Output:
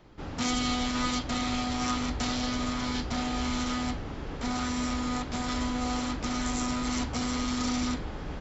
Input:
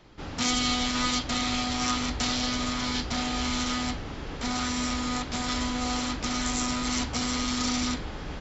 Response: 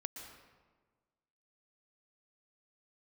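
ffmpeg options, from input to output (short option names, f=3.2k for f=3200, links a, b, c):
-af "equalizer=f=4.7k:w=0.39:g=-6"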